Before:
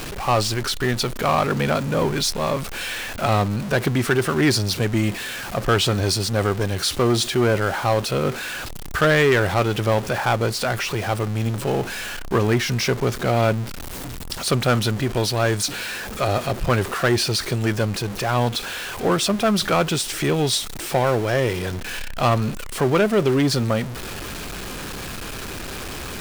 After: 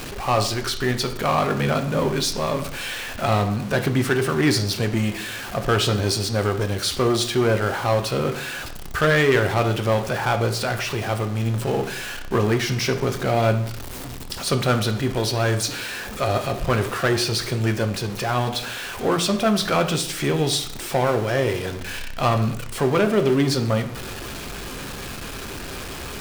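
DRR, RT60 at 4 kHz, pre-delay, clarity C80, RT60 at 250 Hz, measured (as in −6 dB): 6.5 dB, 0.55 s, 6 ms, 14.0 dB, 0.70 s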